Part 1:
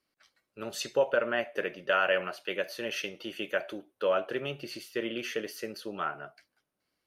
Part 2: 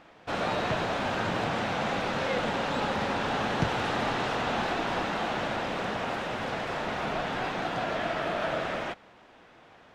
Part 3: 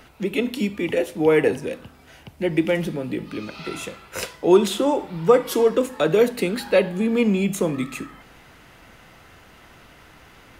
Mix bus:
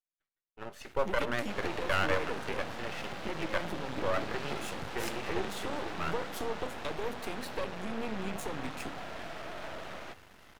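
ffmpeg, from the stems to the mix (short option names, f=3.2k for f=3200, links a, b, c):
-filter_complex "[0:a]agate=range=-22dB:threshold=-54dB:ratio=16:detection=peak,highshelf=f=2.8k:t=q:w=1.5:g=-11,volume=-1dB[a];[1:a]asoftclip=type=tanh:threshold=-24dB,adelay=1200,volume=-6dB[b];[2:a]acompressor=threshold=-28dB:ratio=3,adelay=850,volume=-4.5dB[c];[a][b][c]amix=inputs=3:normalize=0,aeval=exprs='max(val(0),0)':c=same"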